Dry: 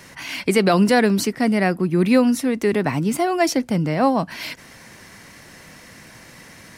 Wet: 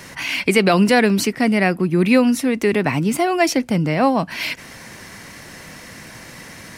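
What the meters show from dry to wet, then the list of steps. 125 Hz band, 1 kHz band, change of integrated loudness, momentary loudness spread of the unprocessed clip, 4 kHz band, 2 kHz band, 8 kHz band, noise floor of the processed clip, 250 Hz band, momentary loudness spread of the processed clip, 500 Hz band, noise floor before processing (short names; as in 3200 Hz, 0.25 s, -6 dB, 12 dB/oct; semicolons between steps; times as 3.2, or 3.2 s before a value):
+1.5 dB, +1.5 dB, +1.5 dB, 11 LU, +3.5 dB, +4.5 dB, +2.0 dB, -39 dBFS, +1.5 dB, 22 LU, +1.5 dB, -45 dBFS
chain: dynamic EQ 2500 Hz, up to +6 dB, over -41 dBFS, Q 2.2; in parallel at -1 dB: compressor, threshold -30 dBFS, peak gain reduction 18 dB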